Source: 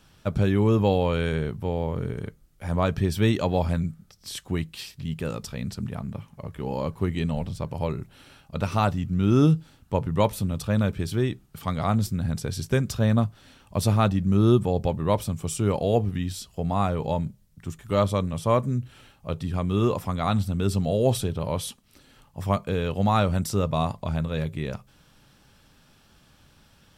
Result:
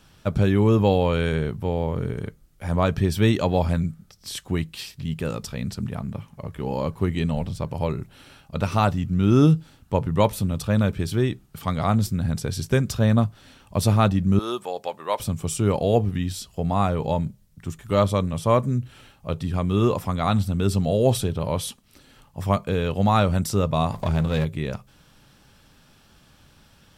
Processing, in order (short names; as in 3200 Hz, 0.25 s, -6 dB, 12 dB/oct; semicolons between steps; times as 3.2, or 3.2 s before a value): 14.39–15.2 HPF 680 Hz 12 dB/oct; 23.92–24.45 power-law curve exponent 0.7; gain +2.5 dB